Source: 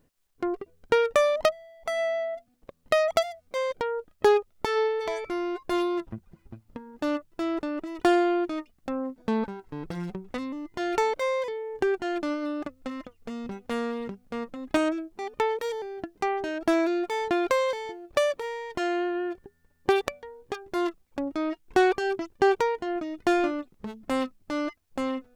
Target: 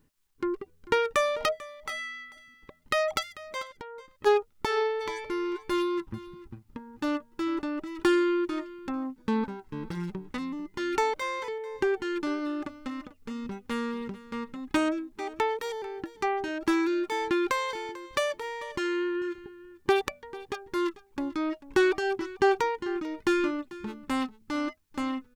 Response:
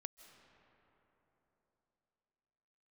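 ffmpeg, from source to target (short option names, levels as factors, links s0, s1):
-filter_complex "[0:a]asplit=3[s0][s1][s2];[s0]afade=t=out:st=3.61:d=0.02[s3];[s1]acompressor=threshold=0.0158:ratio=12,afade=t=in:st=3.61:d=0.02,afade=t=out:st=4.25:d=0.02[s4];[s2]afade=t=in:st=4.25:d=0.02[s5];[s3][s4][s5]amix=inputs=3:normalize=0,asuperstop=centerf=690:order=20:qfactor=5.3,equalizer=f=530:t=o:w=0.28:g=-11.5,asplit=2[s6][s7];[s7]aecho=0:1:443:0.126[s8];[s6][s8]amix=inputs=2:normalize=0"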